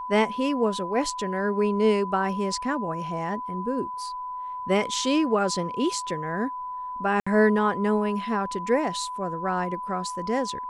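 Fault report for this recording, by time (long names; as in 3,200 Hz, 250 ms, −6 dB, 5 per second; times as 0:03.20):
whistle 1,000 Hz −31 dBFS
0:07.20–0:07.26: drop-out 65 ms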